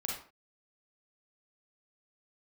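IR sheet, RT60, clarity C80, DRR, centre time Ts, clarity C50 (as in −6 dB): non-exponential decay, 8.0 dB, −2.5 dB, 42 ms, 1.5 dB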